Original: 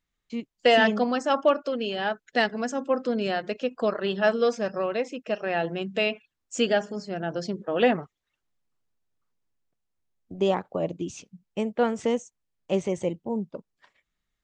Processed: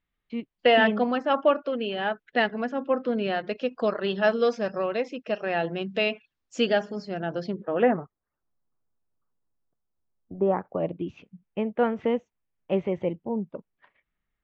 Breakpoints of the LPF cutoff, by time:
LPF 24 dB/oct
3.23 s 3400 Hz
3.68 s 5300 Hz
7.23 s 5300 Hz
7.65 s 3100 Hz
8 s 1400 Hz
10.42 s 1400 Hz
10.84 s 2800 Hz

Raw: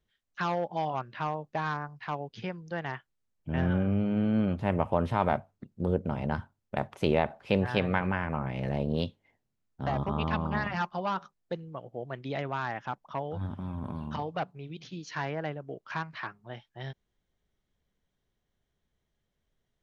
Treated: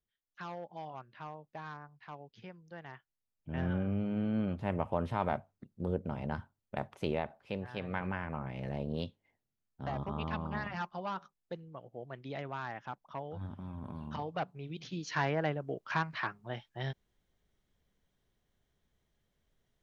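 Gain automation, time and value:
2.87 s -13 dB
3.67 s -6 dB
6.89 s -6 dB
7.72 s -14 dB
8.03 s -7 dB
13.86 s -7 dB
15.11 s +2 dB

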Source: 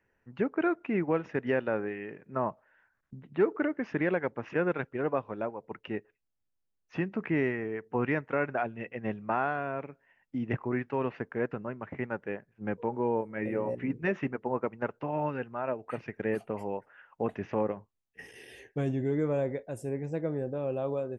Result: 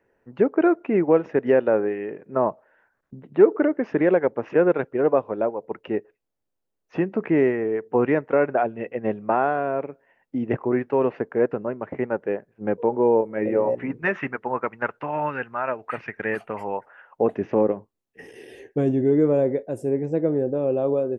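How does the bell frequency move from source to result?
bell +12 dB 2.3 oct
13.48 s 480 Hz
14.21 s 1600 Hz
16.53 s 1600 Hz
17.4 s 360 Hz

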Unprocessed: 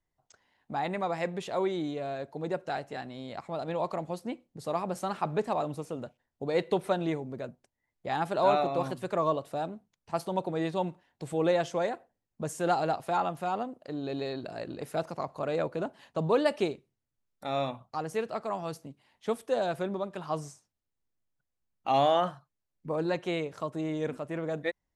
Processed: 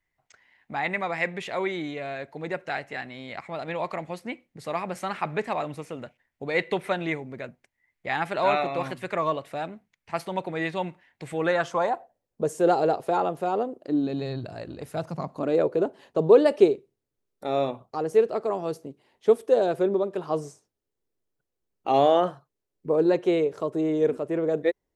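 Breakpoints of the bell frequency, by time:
bell +14 dB 0.9 oct
11.31 s 2100 Hz
12.42 s 430 Hz
13.72 s 430 Hz
14.76 s 61 Hz
15.59 s 410 Hz

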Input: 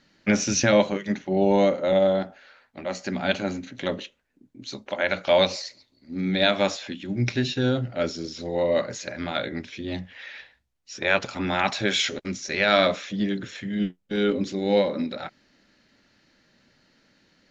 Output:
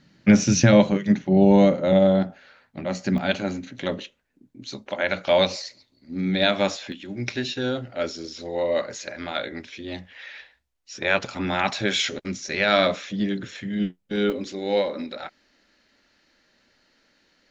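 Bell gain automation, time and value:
bell 140 Hz 1.6 oct
+12 dB
from 3.18 s +2 dB
from 6.92 s -8.5 dB
from 10.94 s +1 dB
from 14.3 s -10.5 dB

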